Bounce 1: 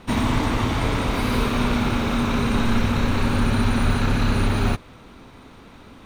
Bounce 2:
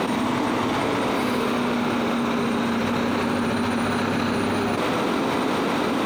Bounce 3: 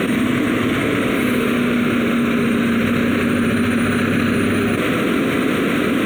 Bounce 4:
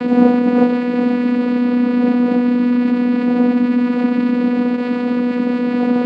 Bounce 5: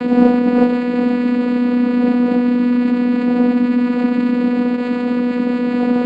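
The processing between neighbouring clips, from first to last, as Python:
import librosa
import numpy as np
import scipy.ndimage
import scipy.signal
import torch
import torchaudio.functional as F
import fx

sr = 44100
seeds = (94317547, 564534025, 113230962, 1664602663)

y1 = scipy.signal.sosfilt(scipy.signal.butter(2, 280.0, 'highpass', fs=sr, output='sos'), x)
y1 = fx.tilt_shelf(y1, sr, db=3.5, hz=970.0)
y1 = fx.env_flatten(y1, sr, amount_pct=100)
y1 = y1 * 10.0 ** (-1.5 / 20.0)
y2 = fx.high_shelf(y1, sr, hz=9700.0, db=3.5)
y2 = fx.fixed_phaser(y2, sr, hz=2100.0, stages=4)
y2 = y2 * 10.0 ** (8.0 / 20.0)
y3 = fx.dmg_wind(y2, sr, seeds[0], corner_hz=450.0, level_db=-19.0)
y3 = fx.vocoder(y3, sr, bands=8, carrier='saw', carrier_hz=245.0)
y3 = y3 + 10.0 ** (-20.5 / 20.0) * np.pad(y3, (int(147 * sr / 1000.0), 0))[:len(y3)]
y3 = y3 * 10.0 ** (1.0 / 20.0)
y4 = fx.tracing_dist(y3, sr, depth_ms=0.027)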